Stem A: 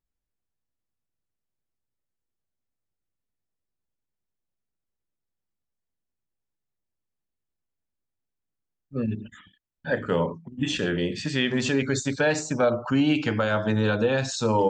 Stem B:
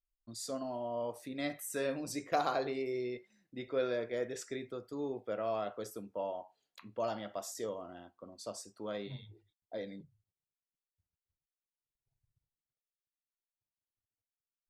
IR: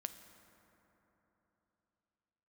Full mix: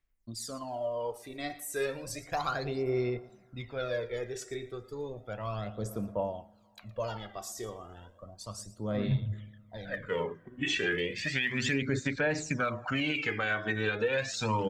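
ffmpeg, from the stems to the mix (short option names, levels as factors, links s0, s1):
-filter_complex "[0:a]equalizer=f=2100:t=o:w=0.74:g=13.5,bandreject=f=850:w=15,volume=0.398,asplit=2[s0][s1];[s1]volume=0.158[s2];[1:a]asubboost=boost=8:cutoff=110,volume=0.841,asplit=4[s3][s4][s5][s6];[s4]volume=0.398[s7];[s5]volume=0.178[s8];[s6]apad=whole_len=648147[s9];[s0][s9]sidechaincompress=threshold=0.002:ratio=8:attack=5.6:release=421[s10];[2:a]atrim=start_sample=2205[s11];[s2][s7]amix=inputs=2:normalize=0[s12];[s12][s11]afir=irnorm=-1:irlink=0[s13];[s8]aecho=0:1:115:1[s14];[s10][s3][s13][s14]amix=inputs=4:normalize=0,aphaser=in_gain=1:out_gain=1:delay=2.7:decay=0.64:speed=0.33:type=sinusoidal,alimiter=limit=0.106:level=0:latency=1:release=233"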